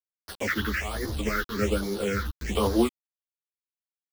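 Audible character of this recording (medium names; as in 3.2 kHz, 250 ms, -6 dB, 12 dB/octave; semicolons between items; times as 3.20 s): a quantiser's noise floor 6-bit, dither none; phasing stages 6, 1.2 Hz, lowest notch 590–2500 Hz; tremolo triangle 0.85 Hz, depth 35%; a shimmering, thickened sound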